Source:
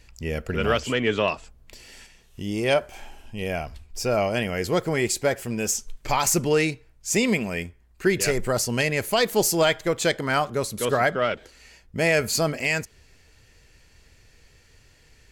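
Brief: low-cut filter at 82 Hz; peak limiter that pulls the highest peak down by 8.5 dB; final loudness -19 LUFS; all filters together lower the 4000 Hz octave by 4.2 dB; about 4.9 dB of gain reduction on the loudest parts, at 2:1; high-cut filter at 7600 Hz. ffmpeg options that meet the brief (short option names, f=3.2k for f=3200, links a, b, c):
-af "highpass=82,lowpass=7.6k,equalizer=f=4k:t=o:g=-5.5,acompressor=threshold=-25dB:ratio=2,volume=13dB,alimiter=limit=-8.5dB:level=0:latency=1"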